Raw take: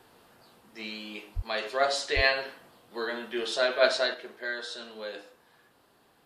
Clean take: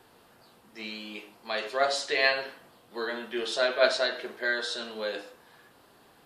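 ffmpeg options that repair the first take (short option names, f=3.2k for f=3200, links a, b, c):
-filter_complex "[0:a]asplit=3[a][b][c];[a]afade=t=out:st=1.35:d=0.02[d];[b]highpass=f=140:w=0.5412,highpass=f=140:w=1.3066,afade=t=in:st=1.35:d=0.02,afade=t=out:st=1.47:d=0.02[e];[c]afade=t=in:st=1.47:d=0.02[f];[d][e][f]amix=inputs=3:normalize=0,asplit=3[g][h][i];[g]afade=t=out:st=2.15:d=0.02[j];[h]highpass=f=140:w=0.5412,highpass=f=140:w=1.3066,afade=t=in:st=2.15:d=0.02,afade=t=out:st=2.27:d=0.02[k];[i]afade=t=in:st=2.27:d=0.02[l];[j][k][l]amix=inputs=3:normalize=0,asetnsamples=n=441:p=0,asendcmd='4.14 volume volume 5.5dB',volume=0dB"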